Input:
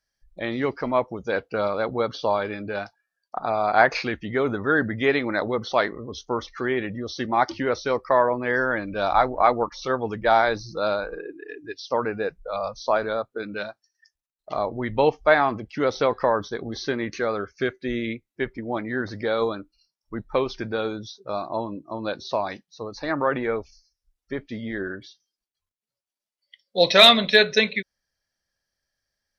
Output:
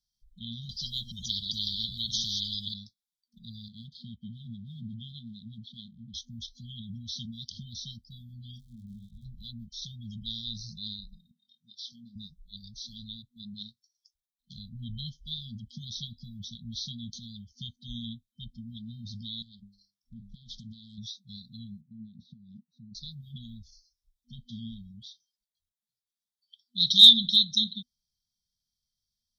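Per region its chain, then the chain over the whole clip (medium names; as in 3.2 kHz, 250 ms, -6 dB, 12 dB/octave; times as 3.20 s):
0.69–2.74 s: chunks repeated in reverse 143 ms, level -11.5 dB + treble shelf 8.8 kHz -11.5 dB + spectrum-flattening compressor 10:1
3.68–6.14 s: companding laws mixed up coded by A + high-pass 110 Hz + distance through air 410 m
8.56–9.24 s: low-pass 1.5 kHz 24 dB/octave + crackle 96 per s -46 dBFS + detune thickener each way 46 cents
11.31–12.16 s: high-pass 310 Hz + treble shelf 6.6 kHz -8.5 dB + doubling 25 ms -8.5 dB
19.42–20.98 s: hum notches 50/100/150/200/250/300/350 Hz + compression 12:1, threshold -34 dBFS + loudspeaker Doppler distortion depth 0.4 ms
21.81–22.95 s: peaking EQ 160 Hz +4.5 dB 2.3 oct + compression 5:1, threshold -33 dBFS + band-pass filter 200 Hz, Q 0.84
whole clip: dynamic bell 270 Hz, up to -7 dB, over -38 dBFS, Q 1.4; FFT band-reject 240–3100 Hz; peaking EQ 3.7 kHz +5.5 dB 0.26 oct; trim -3 dB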